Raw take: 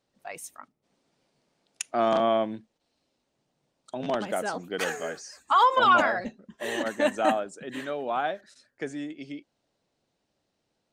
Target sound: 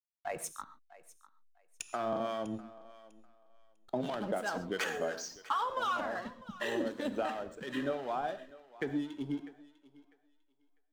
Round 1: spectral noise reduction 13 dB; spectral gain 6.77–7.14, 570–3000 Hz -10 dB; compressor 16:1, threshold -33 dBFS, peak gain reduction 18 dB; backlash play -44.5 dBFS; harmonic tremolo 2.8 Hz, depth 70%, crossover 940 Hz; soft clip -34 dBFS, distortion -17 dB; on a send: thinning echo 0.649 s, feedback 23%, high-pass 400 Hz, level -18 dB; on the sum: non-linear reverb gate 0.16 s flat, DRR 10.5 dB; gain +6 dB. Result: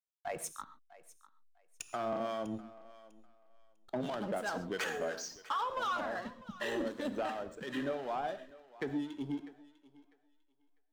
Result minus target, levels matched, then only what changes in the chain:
soft clip: distortion +18 dB
change: soft clip -22.5 dBFS, distortion -35 dB

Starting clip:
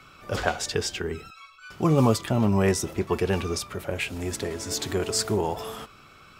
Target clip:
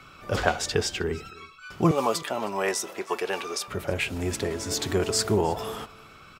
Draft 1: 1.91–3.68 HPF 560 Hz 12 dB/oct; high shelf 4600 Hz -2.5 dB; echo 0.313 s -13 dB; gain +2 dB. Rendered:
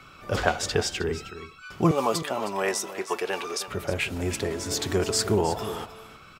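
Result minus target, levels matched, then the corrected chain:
echo-to-direct +9 dB
1.91–3.68 HPF 560 Hz 12 dB/oct; high shelf 4600 Hz -2.5 dB; echo 0.313 s -22 dB; gain +2 dB

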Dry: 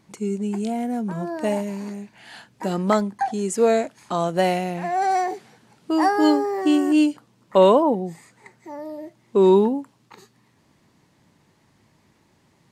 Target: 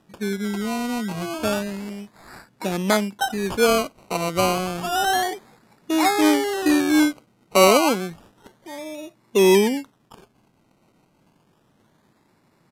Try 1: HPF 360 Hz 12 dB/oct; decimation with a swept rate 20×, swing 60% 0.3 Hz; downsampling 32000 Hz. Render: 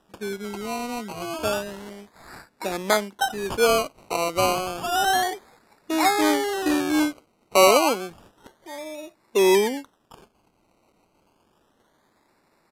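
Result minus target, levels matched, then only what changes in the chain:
125 Hz band -6.5 dB
change: HPF 130 Hz 12 dB/oct

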